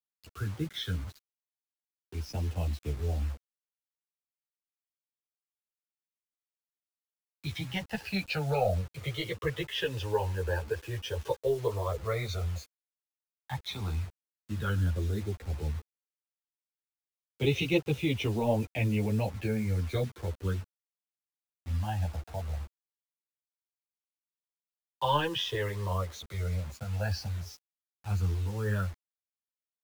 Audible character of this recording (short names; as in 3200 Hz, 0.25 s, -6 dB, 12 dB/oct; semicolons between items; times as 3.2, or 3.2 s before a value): phasing stages 12, 0.071 Hz, lowest notch 220–1500 Hz; a quantiser's noise floor 8-bit, dither none; a shimmering, thickened sound